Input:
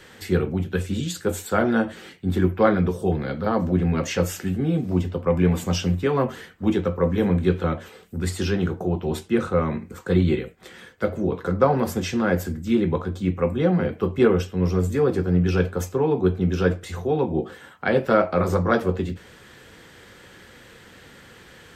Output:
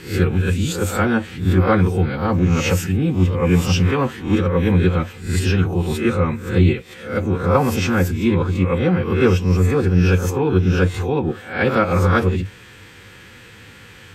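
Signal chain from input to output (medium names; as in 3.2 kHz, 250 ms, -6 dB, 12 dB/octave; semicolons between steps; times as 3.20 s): reverse spectral sustain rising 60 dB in 0.70 s; time stretch by phase-locked vocoder 0.65×; graphic EQ with 31 bands 100 Hz +10 dB, 400 Hz -3 dB, 630 Hz -9 dB, 2.5 kHz +7 dB; trim +3 dB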